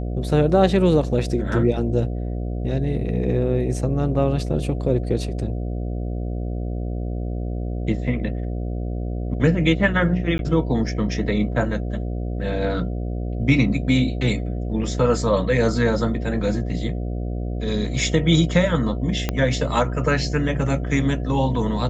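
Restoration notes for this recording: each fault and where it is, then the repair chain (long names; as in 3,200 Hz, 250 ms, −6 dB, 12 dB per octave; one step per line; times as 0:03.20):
mains buzz 60 Hz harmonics 12 −26 dBFS
0:10.38–0:10.39: drop-out 11 ms
0:19.29: click −8 dBFS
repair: click removal
hum removal 60 Hz, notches 12
repair the gap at 0:10.38, 11 ms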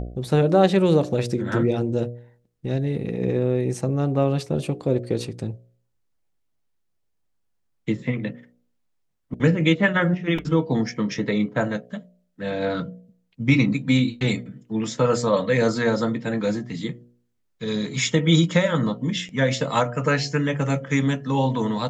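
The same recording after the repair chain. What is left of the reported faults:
0:19.29: click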